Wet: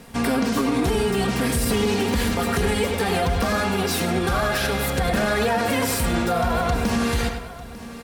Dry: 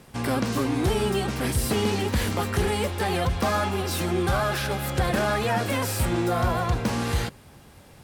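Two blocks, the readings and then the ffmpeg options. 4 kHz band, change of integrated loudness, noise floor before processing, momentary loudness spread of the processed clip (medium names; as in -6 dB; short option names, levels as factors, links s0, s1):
+3.5 dB, +3.0 dB, -50 dBFS, 2 LU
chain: -filter_complex "[0:a]aecho=1:1:4.3:0.52,asplit=2[s0][s1];[s1]adelay=99,lowpass=f=4500:p=1,volume=0.398,asplit=2[s2][s3];[s3]adelay=99,lowpass=f=4500:p=1,volume=0.39,asplit=2[s4][s5];[s5]adelay=99,lowpass=f=4500:p=1,volume=0.39,asplit=2[s6][s7];[s7]adelay=99,lowpass=f=4500:p=1,volume=0.39[s8];[s2][s4][s6][s8]amix=inputs=4:normalize=0[s9];[s0][s9]amix=inputs=2:normalize=0,alimiter=limit=0.126:level=0:latency=1:release=67,asplit=2[s10][s11];[s11]aecho=0:1:897:0.15[s12];[s10][s12]amix=inputs=2:normalize=0,volume=1.78"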